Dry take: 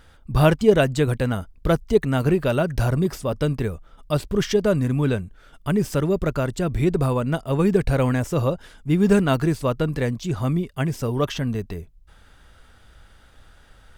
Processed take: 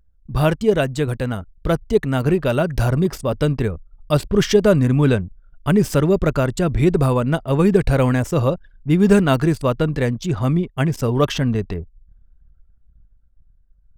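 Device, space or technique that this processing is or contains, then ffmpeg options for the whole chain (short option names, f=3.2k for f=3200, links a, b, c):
voice memo with heavy noise removal: -af "anlmdn=1,dynaudnorm=f=270:g=13:m=11.5dB,volume=-1dB"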